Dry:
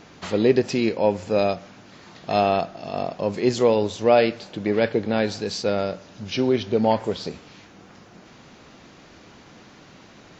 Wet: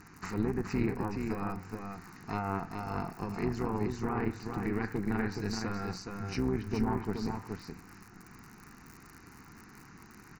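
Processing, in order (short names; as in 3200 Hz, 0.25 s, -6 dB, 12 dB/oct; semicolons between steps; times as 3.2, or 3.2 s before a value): one diode to ground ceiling -16 dBFS; treble ducked by the level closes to 1700 Hz, closed at -16 dBFS; limiter -13.5 dBFS, peak gain reduction 8 dB; AM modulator 200 Hz, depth 60%; crackle 39/s -35 dBFS; fixed phaser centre 1400 Hz, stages 4; on a send: echo 0.422 s -5 dB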